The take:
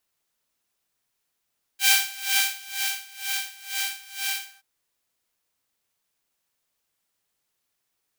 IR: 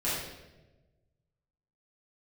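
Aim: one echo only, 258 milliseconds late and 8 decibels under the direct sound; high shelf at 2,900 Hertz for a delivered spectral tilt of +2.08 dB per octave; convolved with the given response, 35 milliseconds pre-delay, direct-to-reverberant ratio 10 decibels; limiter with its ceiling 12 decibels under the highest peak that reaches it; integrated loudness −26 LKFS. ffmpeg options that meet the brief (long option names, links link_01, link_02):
-filter_complex "[0:a]highshelf=frequency=2900:gain=-4.5,alimiter=limit=-18.5dB:level=0:latency=1,aecho=1:1:258:0.398,asplit=2[link_01][link_02];[1:a]atrim=start_sample=2205,adelay=35[link_03];[link_02][link_03]afir=irnorm=-1:irlink=0,volume=-18.5dB[link_04];[link_01][link_04]amix=inputs=2:normalize=0,volume=5dB"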